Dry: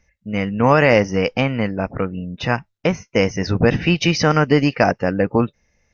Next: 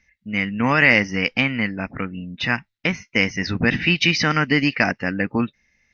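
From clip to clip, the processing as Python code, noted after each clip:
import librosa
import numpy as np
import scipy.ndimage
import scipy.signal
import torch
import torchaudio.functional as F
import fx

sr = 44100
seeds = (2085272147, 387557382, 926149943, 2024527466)

y = fx.graphic_eq(x, sr, hz=(250, 500, 2000, 4000), db=(7, -5, 12, 9))
y = y * librosa.db_to_amplitude(-7.5)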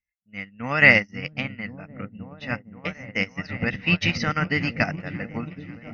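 y = x + 0.34 * np.pad(x, (int(1.5 * sr / 1000.0), 0))[:len(x)]
y = fx.echo_opening(y, sr, ms=532, hz=200, octaves=1, feedback_pct=70, wet_db=0)
y = fx.upward_expand(y, sr, threshold_db=-32.0, expansion=2.5)
y = y * librosa.db_to_amplitude(1.0)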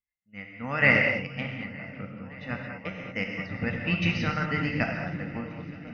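y = fx.high_shelf(x, sr, hz=3900.0, db=-10.5)
y = fx.echo_swing(y, sr, ms=924, ratio=1.5, feedback_pct=55, wet_db=-22.5)
y = fx.rev_gated(y, sr, seeds[0], gate_ms=250, shape='flat', drr_db=1.5)
y = y * librosa.db_to_amplitude(-5.0)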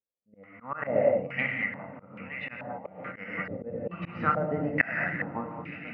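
y = fx.auto_swell(x, sr, attack_ms=206.0)
y = fx.highpass(y, sr, hz=200.0, slope=6)
y = fx.filter_held_lowpass(y, sr, hz=2.3, low_hz=510.0, high_hz=2400.0)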